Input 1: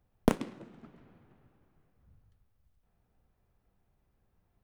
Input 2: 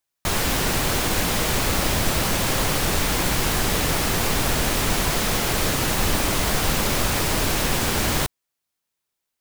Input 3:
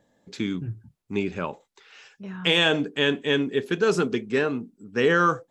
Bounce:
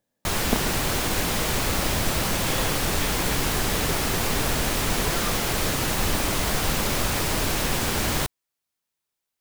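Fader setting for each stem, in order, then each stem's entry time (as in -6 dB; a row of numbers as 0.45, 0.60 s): -0.5, -2.5, -15.5 dB; 0.25, 0.00, 0.00 s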